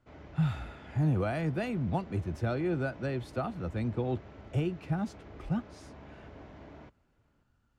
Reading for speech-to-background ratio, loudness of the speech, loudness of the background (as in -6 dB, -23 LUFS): 17.0 dB, -33.5 LUFS, -50.5 LUFS